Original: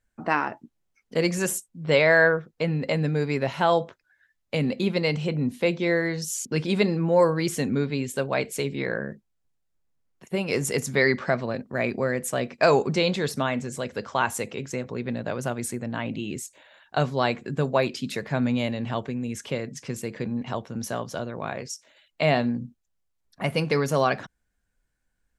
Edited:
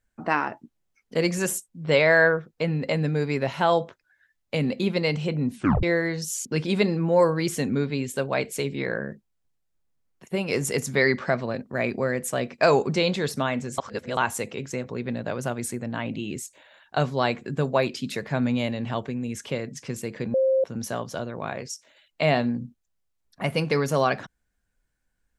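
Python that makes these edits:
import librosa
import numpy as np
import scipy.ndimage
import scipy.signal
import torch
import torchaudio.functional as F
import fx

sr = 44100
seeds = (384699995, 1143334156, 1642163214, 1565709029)

y = fx.edit(x, sr, fx.tape_stop(start_s=5.55, length_s=0.28),
    fx.reverse_span(start_s=13.78, length_s=0.39),
    fx.bleep(start_s=20.34, length_s=0.3, hz=529.0, db=-17.5), tone=tone)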